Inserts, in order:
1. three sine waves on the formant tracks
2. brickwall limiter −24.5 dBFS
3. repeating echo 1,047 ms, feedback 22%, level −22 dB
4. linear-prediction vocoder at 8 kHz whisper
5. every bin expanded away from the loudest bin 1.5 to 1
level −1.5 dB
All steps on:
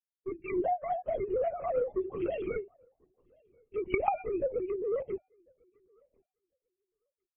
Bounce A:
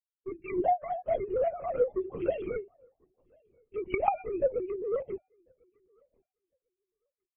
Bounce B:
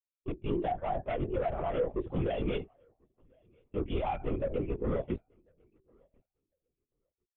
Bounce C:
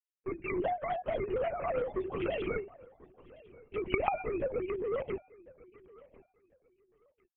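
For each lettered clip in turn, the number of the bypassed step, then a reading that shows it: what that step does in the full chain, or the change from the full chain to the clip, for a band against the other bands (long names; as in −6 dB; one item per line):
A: 2, change in momentary loudness spread +3 LU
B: 1, 125 Hz band +16.0 dB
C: 5, 125 Hz band +6.0 dB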